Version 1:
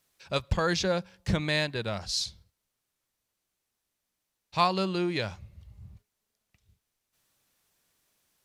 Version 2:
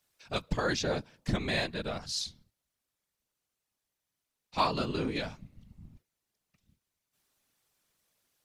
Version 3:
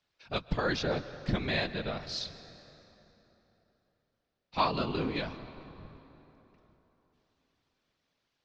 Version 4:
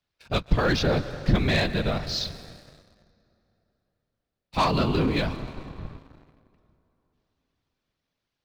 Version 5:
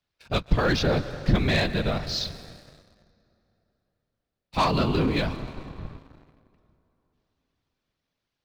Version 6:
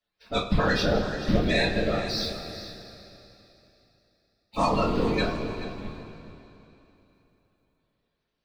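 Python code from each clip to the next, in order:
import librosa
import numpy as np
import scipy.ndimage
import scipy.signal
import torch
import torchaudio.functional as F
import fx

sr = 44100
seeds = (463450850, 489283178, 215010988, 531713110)

y1 = fx.whisperise(x, sr, seeds[0])
y1 = y1 * 10.0 ** (-3.5 / 20.0)
y2 = scipy.signal.sosfilt(scipy.signal.butter(4, 4900.0, 'lowpass', fs=sr, output='sos'), y1)
y2 = fx.rev_plate(y2, sr, seeds[1], rt60_s=3.7, hf_ratio=0.65, predelay_ms=115, drr_db=13.5)
y3 = fx.leveller(y2, sr, passes=2)
y3 = fx.low_shelf(y3, sr, hz=160.0, db=8.5)
y4 = y3
y5 = fx.spec_quant(y4, sr, step_db=30)
y5 = y5 + 10.0 ** (-13.5 / 20.0) * np.pad(y5, (int(431 * sr / 1000.0), 0))[:len(y5)]
y5 = fx.rev_double_slope(y5, sr, seeds[2], early_s=0.26, late_s=3.3, knee_db=-18, drr_db=-6.0)
y5 = y5 * 10.0 ** (-7.0 / 20.0)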